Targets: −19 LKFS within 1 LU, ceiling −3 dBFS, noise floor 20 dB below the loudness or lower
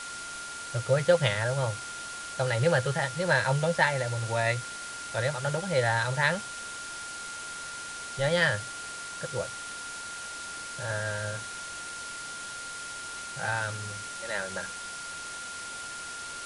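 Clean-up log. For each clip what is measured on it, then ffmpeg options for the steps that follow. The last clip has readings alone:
interfering tone 1,400 Hz; level of the tone −39 dBFS; background noise floor −40 dBFS; target noise floor −51 dBFS; integrated loudness −30.5 LKFS; sample peak −8.5 dBFS; target loudness −19.0 LKFS
→ -af "bandreject=frequency=1400:width=30"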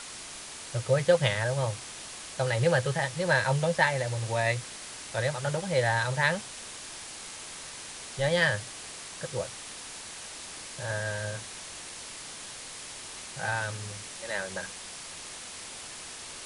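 interfering tone none found; background noise floor −43 dBFS; target noise floor −51 dBFS
→ -af "afftdn=noise_reduction=8:noise_floor=-43"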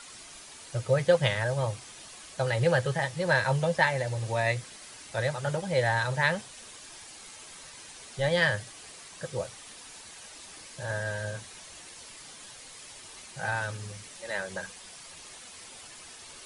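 background noise floor −48 dBFS; target noise floor −49 dBFS
→ -af "afftdn=noise_reduction=6:noise_floor=-48"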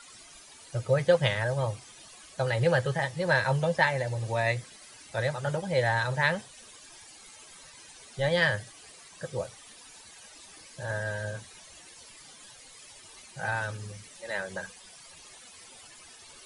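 background noise floor −51 dBFS; integrated loudness −29.0 LKFS; sample peak −9.0 dBFS; target loudness −19.0 LKFS
→ -af "volume=10dB,alimiter=limit=-3dB:level=0:latency=1"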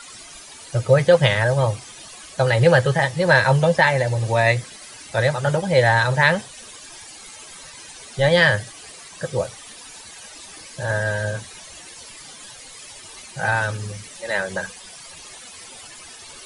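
integrated loudness −19.0 LKFS; sample peak −3.0 dBFS; background noise floor −41 dBFS

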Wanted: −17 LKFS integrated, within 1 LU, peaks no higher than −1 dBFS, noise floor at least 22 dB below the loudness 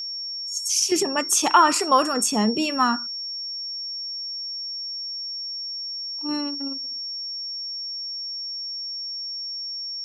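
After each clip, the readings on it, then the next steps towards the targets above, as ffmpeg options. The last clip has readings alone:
interfering tone 5,500 Hz; level of the tone −29 dBFS; integrated loudness −24.0 LKFS; sample peak −3.5 dBFS; target loudness −17.0 LKFS
→ -af "bandreject=frequency=5500:width=30"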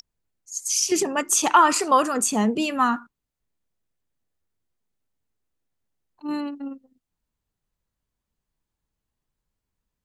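interfering tone none found; integrated loudness −21.5 LKFS; sample peak −4.0 dBFS; target loudness −17.0 LKFS
→ -af "volume=4.5dB,alimiter=limit=-1dB:level=0:latency=1"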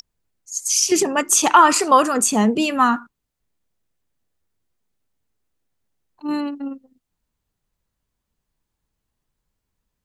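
integrated loudness −17.0 LKFS; sample peak −1.0 dBFS; background noise floor −80 dBFS

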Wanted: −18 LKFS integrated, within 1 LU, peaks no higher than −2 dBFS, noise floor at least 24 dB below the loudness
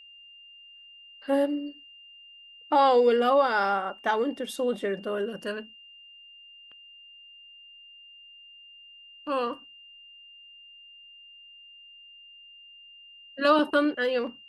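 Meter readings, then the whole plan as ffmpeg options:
interfering tone 2,800 Hz; level of the tone −48 dBFS; integrated loudness −25.5 LKFS; sample peak −10.0 dBFS; target loudness −18.0 LKFS
→ -af "bandreject=frequency=2800:width=30"
-af "volume=7.5dB"

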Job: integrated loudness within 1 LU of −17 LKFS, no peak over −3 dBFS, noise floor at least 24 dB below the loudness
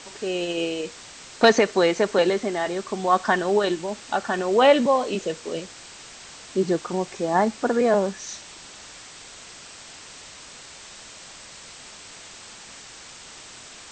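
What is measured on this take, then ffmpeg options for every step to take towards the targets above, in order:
background noise floor −44 dBFS; target noise floor −47 dBFS; integrated loudness −22.5 LKFS; sample peak −5.0 dBFS; target loudness −17.0 LKFS
→ -af "afftdn=noise_reduction=6:noise_floor=-44"
-af "volume=5.5dB,alimiter=limit=-3dB:level=0:latency=1"

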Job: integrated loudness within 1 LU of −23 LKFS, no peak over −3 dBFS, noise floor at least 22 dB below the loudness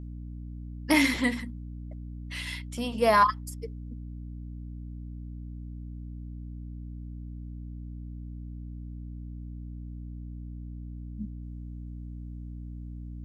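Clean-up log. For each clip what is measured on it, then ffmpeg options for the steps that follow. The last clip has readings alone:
mains hum 60 Hz; hum harmonics up to 300 Hz; level of the hum −37 dBFS; integrated loudness −33.0 LKFS; sample peak −9.5 dBFS; target loudness −23.0 LKFS
→ -af "bandreject=frequency=60:width_type=h:width=4,bandreject=frequency=120:width_type=h:width=4,bandreject=frequency=180:width_type=h:width=4,bandreject=frequency=240:width_type=h:width=4,bandreject=frequency=300:width_type=h:width=4"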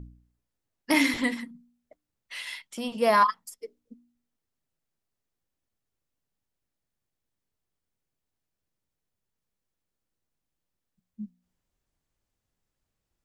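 mains hum none found; integrated loudness −26.0 LKFS; sample peak −10.0 dBFS; target loudness −23.0 LKFS
→ -af "volume=3dB"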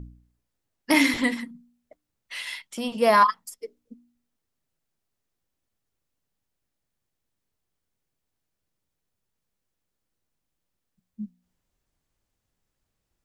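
integrated loudness −23.0 LKFS; sample peak −7.0 dBFS; background noise floor −82 dBFS

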